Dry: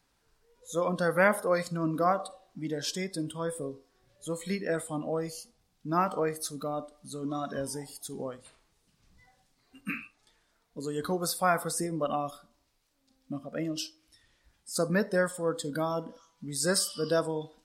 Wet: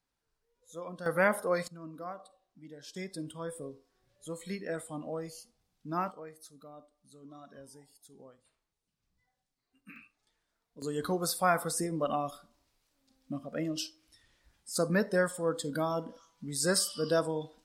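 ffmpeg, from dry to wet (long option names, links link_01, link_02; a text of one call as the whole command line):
ffmpeg -i in.wav -af "asetnsamples=nb_out_samples=441:pad=0,asendcmd='1.06 volume volume -3dB;1.68 volume volume -15.5dB;2.96 volume volume -6dB;6.11 volume volume -17dB;9.96 volume volume -10.5dB;10.82 volume volume -1dB',volume=-13dB" out.wav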